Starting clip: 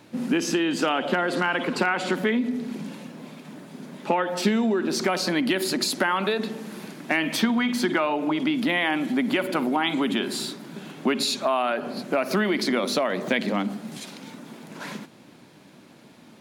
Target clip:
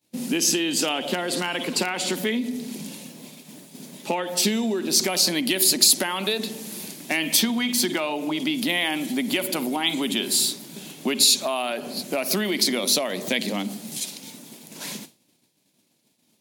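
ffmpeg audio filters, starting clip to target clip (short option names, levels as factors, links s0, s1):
-af "agate=range=0.0224:threshold=0.0126:ratio=3:detection=peak,crystalizer=i=5:c=0,equalizer=f=1400:w=1.4:g=-9.5,volume=0.794"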